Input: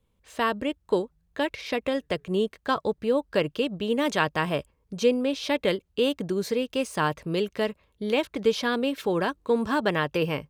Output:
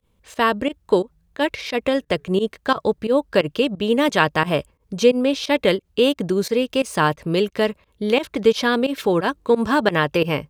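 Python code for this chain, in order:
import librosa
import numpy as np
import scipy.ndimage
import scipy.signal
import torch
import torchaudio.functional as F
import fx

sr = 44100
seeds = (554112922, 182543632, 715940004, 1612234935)

y = fx.volume_shaper(x, sr, bpm=88, per_beat=2, depth_db=-19, release_ms=82.0, shape='fast start')
y = y * librosa.db_to_amplitude(7.0)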